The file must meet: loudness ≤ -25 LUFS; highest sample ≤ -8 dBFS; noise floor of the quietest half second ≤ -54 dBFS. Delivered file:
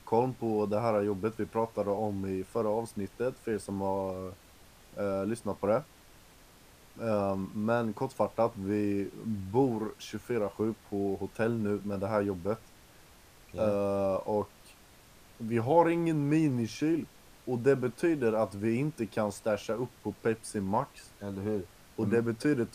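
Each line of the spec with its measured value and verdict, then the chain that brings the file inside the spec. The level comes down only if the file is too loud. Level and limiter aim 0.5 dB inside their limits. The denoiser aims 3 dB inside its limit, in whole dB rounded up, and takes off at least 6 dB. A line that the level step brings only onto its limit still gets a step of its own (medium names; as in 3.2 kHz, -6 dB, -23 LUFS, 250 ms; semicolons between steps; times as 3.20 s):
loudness -31.5 LUFS: pass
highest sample -10.5 dBFS: pass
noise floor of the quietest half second -57 dBFS: pass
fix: none needed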